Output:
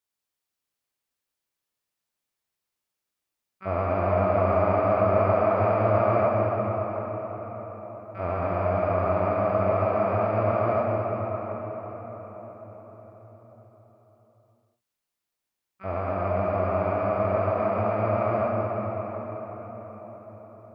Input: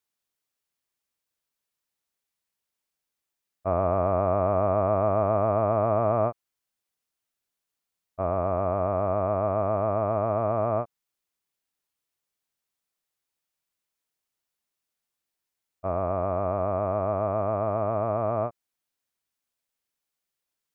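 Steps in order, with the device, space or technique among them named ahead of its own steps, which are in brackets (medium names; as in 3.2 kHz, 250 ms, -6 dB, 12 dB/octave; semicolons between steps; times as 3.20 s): shimmer-style reverb (harmony voices +12 st -11 dB; reverberation RT60 5.7 s, pre-delay 8 ms, DRR -2.5 dB); trim -3.5 dB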